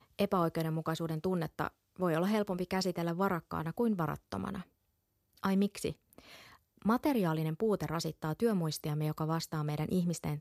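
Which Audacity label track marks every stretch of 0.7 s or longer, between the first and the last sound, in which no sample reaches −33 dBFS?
4.580000	5.440000	silence
5.900000	6.850000	silence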